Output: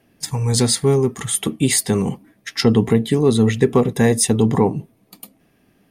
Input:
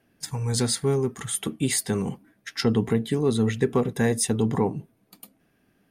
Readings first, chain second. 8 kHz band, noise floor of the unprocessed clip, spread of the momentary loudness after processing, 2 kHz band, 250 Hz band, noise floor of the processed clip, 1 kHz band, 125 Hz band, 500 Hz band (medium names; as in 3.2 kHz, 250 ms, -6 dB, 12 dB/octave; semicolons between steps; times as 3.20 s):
+7.5 dB, -67 dBFS, 8 LU, +6.0 dB, +7.5 dB, -60 dBFS, +7.0 dB, +7.5 dB, +7.5 dB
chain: peaking EQ 1.5 kHz -8 dB 0.22 oct; trim +7.5 dB